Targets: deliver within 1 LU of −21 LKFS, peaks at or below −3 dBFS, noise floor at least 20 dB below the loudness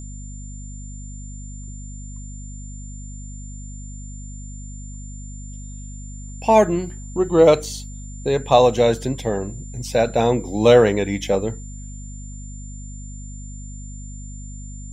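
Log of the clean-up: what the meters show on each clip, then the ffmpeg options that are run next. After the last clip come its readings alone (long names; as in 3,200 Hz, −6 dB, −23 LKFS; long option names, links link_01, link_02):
mains hum 50 Hz; hum harmonics up to 250 Hz; level of the hum −32 dBFS; interfering tone 7,200 Hz; level of the tone −42 dBFS; integrated loudness −18.5 LKFS; sample peak −2.0 dBFS; target loudness −21.0 LKFS
→ -af "bandreject=frequency=50:width_type=h:width=6,bandreject=frequency=100:width_type=h:width=6,bandreject=frequency=150:width_type=h:width=6,bandreject=frequency=200:width_type=h:width=6,bandreject=frequency=250:width_type=h:width=6"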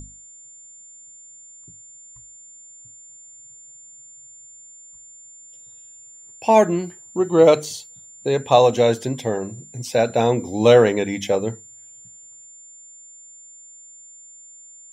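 mains hum none found; interfering tone 7,200 Hz; level of the tone −42 dBFS
→ -af "bandreject=frequency=7200:width=30"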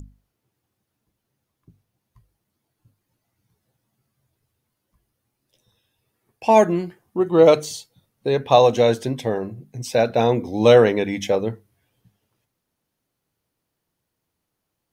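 interfering tone none found; integrated loudness −18.5 LKFS; sample peak −1.5 dBFS; target loudness −21.0 LKFS
→ -af "volume=-2.5dB"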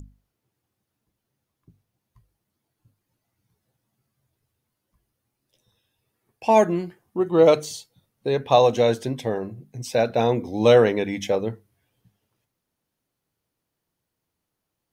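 integrated loudness −21.0 LKFS; sample peak −4.0 dBFS; background noise floor −82 dBFS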